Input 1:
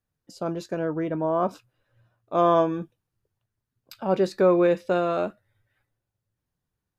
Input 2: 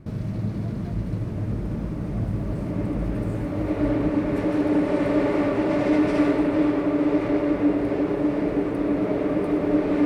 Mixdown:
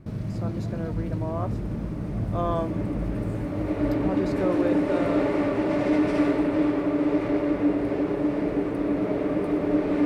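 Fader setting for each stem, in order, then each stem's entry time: -8.0 dB, -2.0 dB; 0.00 s, 0.00 s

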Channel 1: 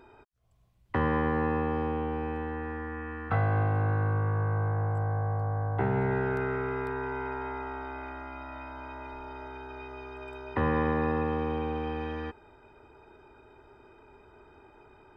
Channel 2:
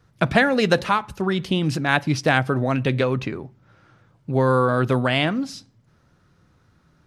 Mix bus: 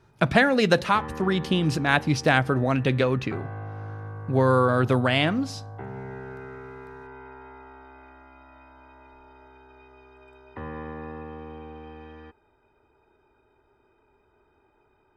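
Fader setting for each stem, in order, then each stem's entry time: -9.5 dB, -1.5 dB; 0.00 s, 0.00 s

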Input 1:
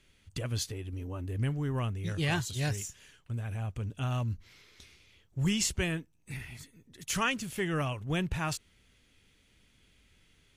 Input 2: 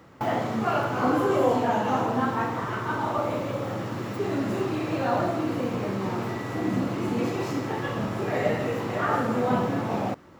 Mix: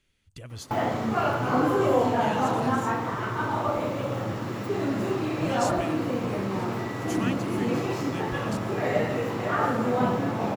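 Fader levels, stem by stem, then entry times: -7.0 dB, 0.0 dB; 0.00 s, 0.50 s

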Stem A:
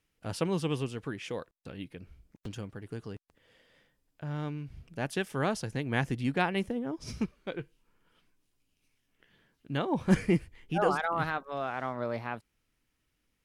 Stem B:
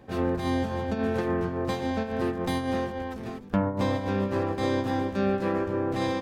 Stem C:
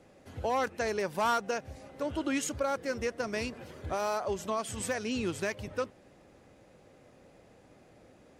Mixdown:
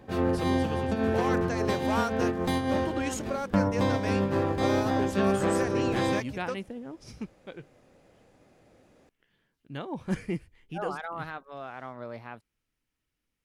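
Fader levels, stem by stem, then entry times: -6.0 dB, +0.5 dB, -2.0 dB; 0.00 s, 0.00 s, 0.70 s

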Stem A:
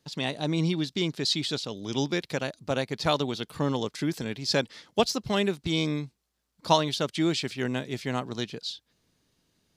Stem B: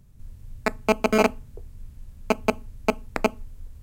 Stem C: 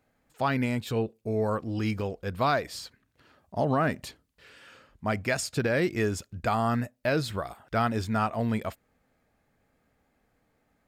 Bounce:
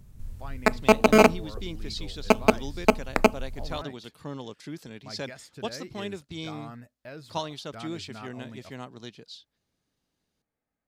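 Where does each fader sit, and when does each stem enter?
-10.0 dB, +3.0 dB, -16.5 dB; 0.65 s, 0.00 s, 0.00 s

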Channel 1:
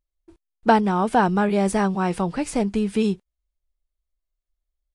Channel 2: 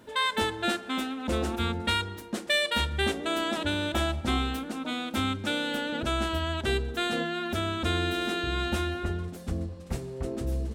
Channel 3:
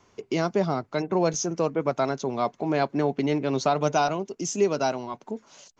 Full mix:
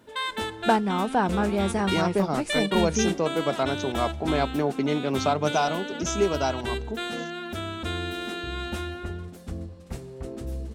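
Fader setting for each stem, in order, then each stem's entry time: -5.0 dB, -3.0 dB, -1.0 dB; 0.00 s, 0.00 s, 1.60 s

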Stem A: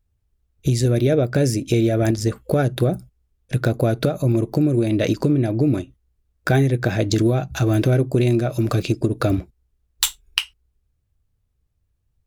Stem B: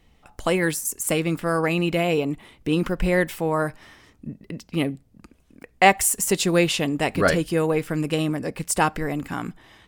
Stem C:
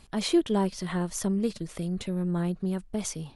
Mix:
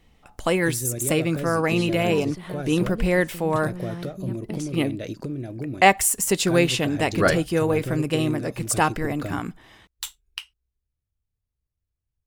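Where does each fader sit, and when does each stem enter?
-13.0 dB, 0.0 dB, -6.5 dB; 0.00 s, 0.00 s, 1.55 s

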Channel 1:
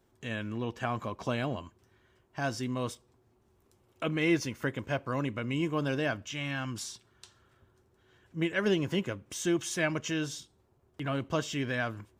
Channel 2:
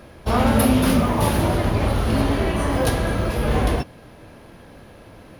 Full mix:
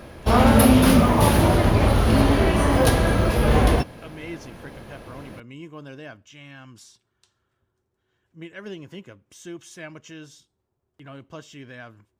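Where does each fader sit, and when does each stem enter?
-9.0 dB, +2.5 dB; 0.00 s, 0.00 s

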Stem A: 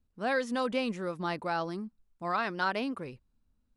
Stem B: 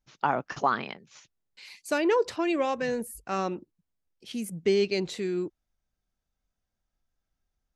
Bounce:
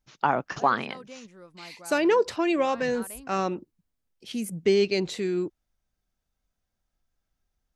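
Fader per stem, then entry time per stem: -14.0 dB, +2.5 dB; 0.35 s, 0.00 s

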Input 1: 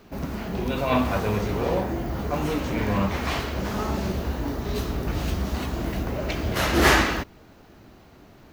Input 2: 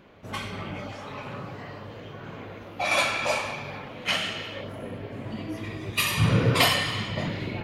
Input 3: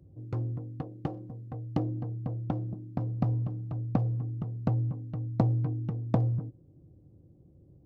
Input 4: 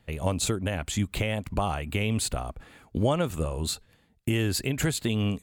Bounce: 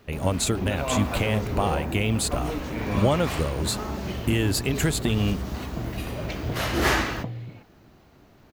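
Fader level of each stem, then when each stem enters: -4.5 dB, -17.0 dB, -8.0 dB, +2.5 dB; 0.00 s, 0.00 s, 1.10 s, 0.00 s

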